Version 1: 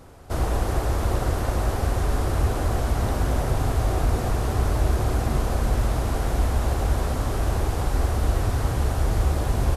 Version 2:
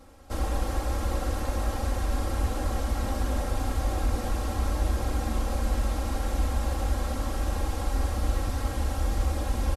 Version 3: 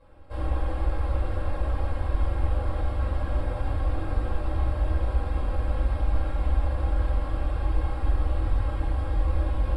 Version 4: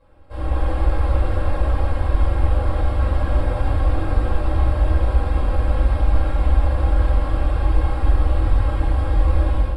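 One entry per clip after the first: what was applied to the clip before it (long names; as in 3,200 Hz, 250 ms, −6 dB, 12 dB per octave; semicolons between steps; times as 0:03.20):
parametric band 5,200 Hz +2.5 dB 2.1 octaves; comb filter 3.7 ms, depth 87%; level −7.5 dB
moving average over 7 samples; parametric band 220 Hz −6.5 dB 0.64 octaves; rectangular room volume 970 cubic metres, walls furnished, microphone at 5.3 metres; level −8 dB
automatic gain control gain up to 8 dB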